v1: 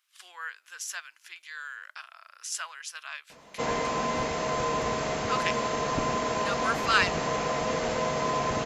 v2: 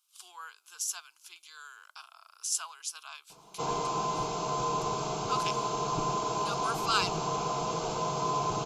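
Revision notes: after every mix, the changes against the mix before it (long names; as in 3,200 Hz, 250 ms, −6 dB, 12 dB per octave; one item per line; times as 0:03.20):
speech: add parametric band 10,000 Hz +5.5 dB 1.7 octaves
master: add phaser with its sweep stopped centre 370 Hz, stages 8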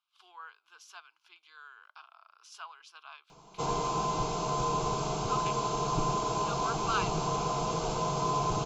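speech: add high-frequency loss of the air 330 metres
background: add low-shelf EQ 96 Hz +11.5 dB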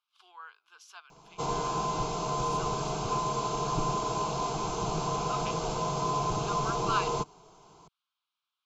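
background: entry −2.20 s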